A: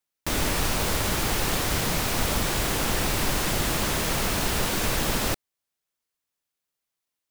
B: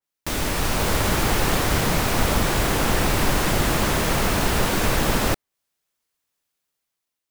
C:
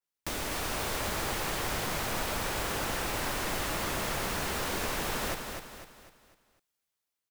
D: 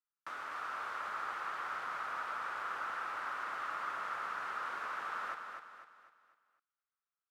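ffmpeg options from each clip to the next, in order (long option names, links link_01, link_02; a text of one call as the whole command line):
ffmpeg -i in.wav -af "dynaudnorm=framelen=200:gausssize=7:maxgain=6dB,adynamicequalizer=threshold=0.0112:dfrequency=2400:dqfactor=0.7:tfrequency=2400:tqfactor=0.7:attack=5:release=100:ratio=0.375:range=2.5:mode=cutabove:tftype=highshelf" out.wav
ffmpeg -i in.wav -filter_complex "[0:a]acrossover=split=360|970[link_01][link_02][link_03];[link_01]acompressor=threshold=-34dB:ratio=4[link_04];[link_02]acompressor=threshold=-34dB:ratio=4[link_05];[link_03]acompressor=threshold=-29dB:ratio=4[link_06];[link_04][link_05][link_06]amix=inputs=3:normalize=0,asplit=2[link_07][link_08];[link_08]aecho=0:1:250|500|750|1000|1250:0.501|0.21|0.0884|0.0371|0.0156[link_09];[link_07][link_09]amix=inputs=2:normalize=0,volume=-5.5dB" out.wav
ffmpeg -i in.wav -af "bandpass=frequency=1300:width_type=q:width=4.8:csg=0,volume=3.5dB" out.wav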